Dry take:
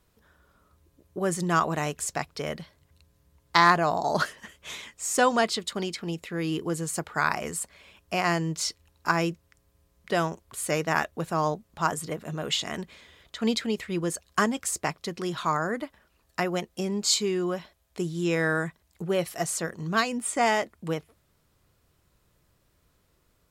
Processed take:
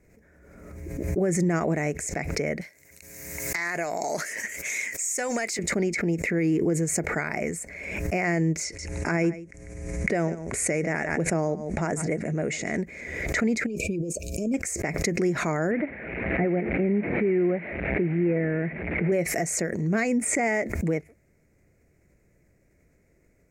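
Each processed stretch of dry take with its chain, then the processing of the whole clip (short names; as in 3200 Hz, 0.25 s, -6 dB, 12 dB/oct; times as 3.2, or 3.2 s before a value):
2.61–5.59 tilt +4.5 dB/oct + compressor 4:1, threshold -30 dBFS + sample leveller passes 1
8.64–12.78 echo 0.146 s -19 dB + careless resampling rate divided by 2×, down none, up filtered
13.66–14.54 negative-ratio compressor -36 dBFS + brick-wall FIR band-stop 680–2300 Hz
15.71–19.12 delta modulation 16 kbps, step -36 dBFS + HPF 99 Hz
whole clip: EQ curve 120 Hz 0 dB, 210 Hz +4 dB, 380 Hz +4 dB, 660 Hz +1 dB, 1100 Hz -15 dB, 2200 Hz +7 dB, 3200 Hz -25 dB, 6600 Hz -2 dB, 10000 Hz -11 dB; limiter -19.5 dBFS; backwards sustainer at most 40 dB/s; gain +3 dB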